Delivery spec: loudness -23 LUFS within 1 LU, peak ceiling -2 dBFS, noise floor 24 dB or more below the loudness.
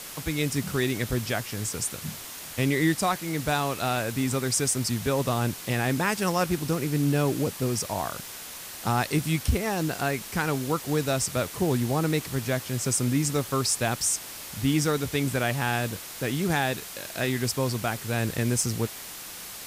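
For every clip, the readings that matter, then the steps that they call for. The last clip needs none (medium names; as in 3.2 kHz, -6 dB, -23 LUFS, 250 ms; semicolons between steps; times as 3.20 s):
noise floor -40 dBFS; noise floor target -51 dBFS; loudness -27.0 LUFS; peak level -12.0 dBFS; loudness target -23.0 LUFS
-> noise reduction 11 dB, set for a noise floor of -40 dBFS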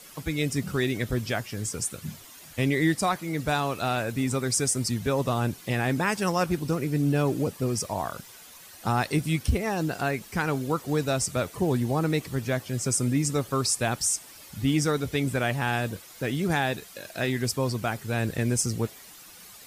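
noise floor -48 dBFS; noise floor target -51 dBFS
-> noise reduction 6 dB, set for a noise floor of -48 dBFS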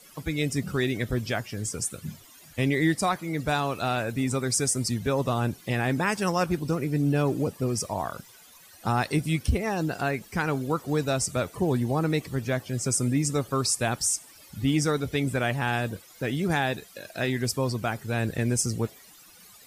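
noise floor -52 dBFS; loudness -27.5 LUFS; peak level -13.0 dBFS; loudness target -23.0 LUFS
-> trim +4.5 dB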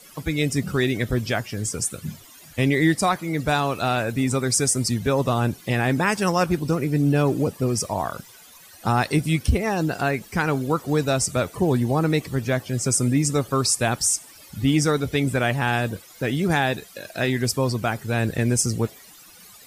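loudness -23.0 LUFS; peak level -8.5 dBFS; noise floor -47 dBFS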